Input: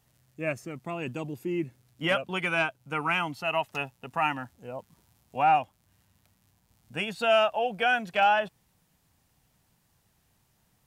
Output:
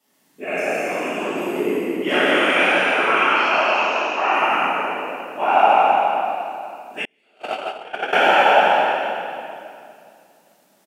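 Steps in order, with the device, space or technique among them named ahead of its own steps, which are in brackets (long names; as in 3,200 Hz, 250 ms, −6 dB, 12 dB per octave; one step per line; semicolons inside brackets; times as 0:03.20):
peak hold with a decay on every bin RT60 1.82 s
0:03.10–0:04.33: elliptic band-pass filter 300–6,300 Hz, stop band 40 dB
loudspeakers that aren't time-aligned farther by 10 metres −8 dB, 21 metres −7 dB, 58 metres −3 dB, 96 metres −10 dB
whispering ghost (random phases in short frames; high-pass filter 220 Hz 24 dB per octave; convolution reverb RT60 2.4 s, pre-delay 3 ms, DRR −4.5 dB)
0:07.05–0:08.13: noise gate −10 dBFS, range −41 dB
level −1.5 dB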